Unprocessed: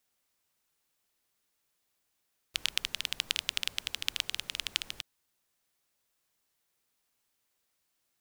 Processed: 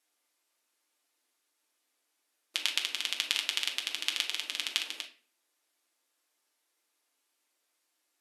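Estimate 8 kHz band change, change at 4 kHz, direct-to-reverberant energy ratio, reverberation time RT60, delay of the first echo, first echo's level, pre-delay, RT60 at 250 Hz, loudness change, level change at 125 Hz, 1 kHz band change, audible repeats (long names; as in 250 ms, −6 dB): +1.5 dB, +2.0 dB, 1.5 dB, 0.45 s, no echo audible, no echo audible, 6 ms, 0.55 s, +2.0 dB, below −30 dB, +2.5 dB, no echo audible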